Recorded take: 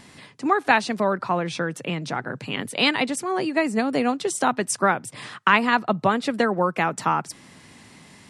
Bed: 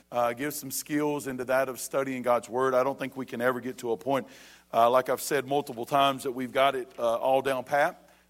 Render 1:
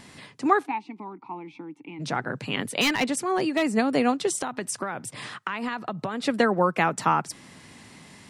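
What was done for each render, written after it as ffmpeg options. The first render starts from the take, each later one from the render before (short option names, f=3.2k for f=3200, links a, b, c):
-filter_complex "[0:a]asplit=3[a][b][c];[a]afade=t=out:st=0.65:d=0.02[d];[b]asplit=3[e][f][g];[e]bandpass=f=300:t=q:w=8,volume=0dB[h];[f]bandpass=f=870:t=q:w=8,volume=-6dB[i];[g]bandpass=f=2.24k:t=q:w=8,volume=-9dB[j];[h][i][j]amix=inputs=3:normalize=0,afade=t=in:st=0.65:d=0.02,afade=t=out:st=1.99:d=0.02[k];[c]afade=t=in:st=1.99:d=0.02[l];[d][k][l]amix=inputs=3:normalize=0,asettb=1/sr,asplit=3[m][n][o];[m]atrim=end=2.814[p];[n]atrim=start=2.81:end=3.65,asetpts=PTS-STARTPTS,afade=t=in:d=0.004:c=qsin,afade=t=out:st=0.836:d=0.004:c=qsin,volume=17dB,asoftclip=hard,volume=-17dB[q];[o]atrim=start=3.646[r];[p][q]acrossfade=d=0.004:c1=hsin:c2=qsin[s];[s][r]acrossfade=d=0.004:c1=qsin:c2=hsin,asettb=1/sr,asplit=3[t][u][v];[t]atrim=end=4.354[w];[u]atrim=start=4.35:end=6.25,asetpts=PTS-STARTPTS,afade=t=in:d=0.004:c=qsin,afade=t=out:st=1.896:d=0.004:c=qsin,acompressor=threshold=-25dB:ratio=12:attack=3.2:release=140:knee=1:detection=peak[x];[v]atrim=start=6.246[y];[w][x]acrossfade=d=0.004:c1=hsin:c2=qsin[z];[z][y]acrossfade=d=0.004:c1=qsin:c2=hsin"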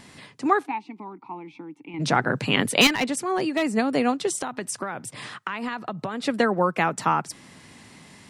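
-filter_complex "[0:a]asplit=3[a][b][c];[a]atrim=end=1.942[d];[b]atrim=start=1.938:end=2.872,asetpts=PTS-STARTPTS,volume=7dB[e];[c]atrim=start=2.868[f];[d][e]acrossfade=d=0.004:c1=hsin:c2=hsin[g];[g][f]acrossfade=d=0.004:c1=hsin:c2=hsin"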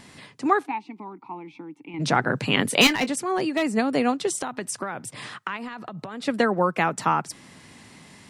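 -filter_complex "[0:a]asettb=1/sr,asplit=3[a][b][c];[a]atrim=end=2.654[d];[b]atrim=start=2.65:end=3.12,asetpts=PTS-STARTPTS,afade=t=in:d=0.004:c=qsin,afade=t=out:st=0.466:d=0.004:c=qsin,asplit=2[e][f];[f]adelay=23,volume=-13dB[g];[e][g]amix=inputs=2:normalize=0,atrim=end_sample=20727[h];[c]atrim=start=3.116[i];[d][h]acrossfade=d=0.004:c1=hsin:c2=qsin[j];[j][i]acrossfade=d=0.004:c1=qsin:c2=hsin,asettb=1/sr,asplit=3[k][l][m];[k]atrim=end=5.564[n];[l]atrim=start=5.56:end=6.28,asetpts=PTS-STARTPTS,afade=t=in:d=0.004:c=qsin,afade=t=out:st=0.716:d=0.004:c=qsin,acompressor=threshold=-31dB:ratio=5:attack=3.2:release=140:knee=1:detection=peak[o];[m]atrim=start=6.276[p];[n][o]acrossfade=d=0.004:c1=hsin:c2=qsin[q];[q][p]acrossfade=d=0.004:c1=qsin:c2=hsin"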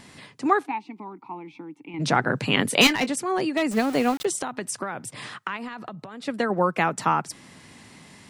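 -filter_complex "[0:a]asettb=1/sr,asplit=3[a][b][c];[a]atrim=end=3.714[d];[b]atrim=start=3.71:end=4.25,asetpts=PTS-STARTPTS,afade=t=in:d=0.004:c=qsin,afade=t=out:st=0.536:d=0.004:c=qsin,aeval=exprs='val(0)*gte(abs(val(0)),0.0266)':c=same[e];[c]atrim=start=4.246[f];[d][e]acrossfade=d=0.004:c1=hsin:c2=qsin[g];[g][f]acrossfade=d=0.004:c1=qsin:c2=hsin,asplit=3[h][i][j];[h]atrim=end=5.952[k];[i]atrim=start=5.948:end=6.502,asetpts=PTS-STARTPTS,volume=-4dB[l];[j]atrim=start=6.498[m];[k][l]acrossfade=d=0.004:c1=hsin:c2=hsin[n];[n][m]acrossfade=d=0.004:c1=hsin:c2=hsin"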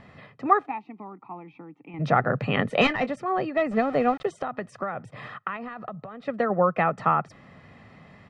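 -af "lowpass=1.8k,aecho=1:1:1.6:0.51"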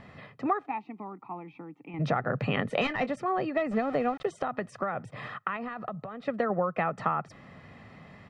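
-af "acompressor=threshold=-24dB:ratio=6"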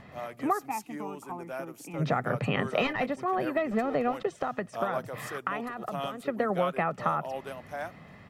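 -filter_complex "[1:a]volume=-12.5dB[a];[0:a][a]amix=inputs=2:normalize=0"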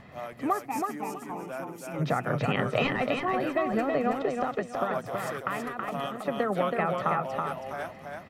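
-af "aecho=1:1:325|650|975:0.631|0.151|0.0363"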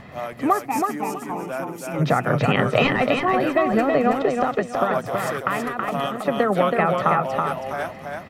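-af "volume=8dB"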